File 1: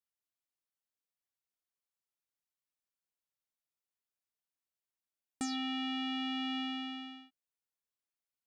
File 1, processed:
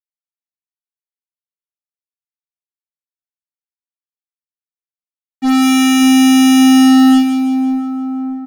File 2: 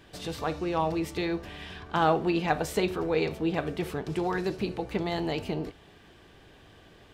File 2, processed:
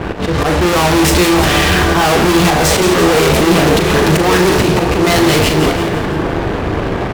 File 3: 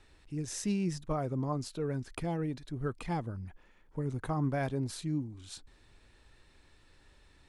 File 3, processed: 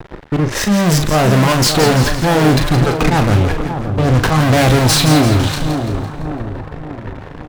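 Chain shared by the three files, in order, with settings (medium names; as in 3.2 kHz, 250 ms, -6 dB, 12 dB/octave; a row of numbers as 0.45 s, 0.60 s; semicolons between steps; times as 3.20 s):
slow attack 260 ms; level-controlled noise filter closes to 870 Hz, open at -29 dBFS; fuzz box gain 54 dB, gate -58 dBFS; doubling 39 ms -8 dB; two-band feedback delay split 1.3 kHz, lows 577 ms, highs 169 ms, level -8 dB; trim +2 dB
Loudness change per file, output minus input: +26.5 LU, +18.0 LU, +22.0 LU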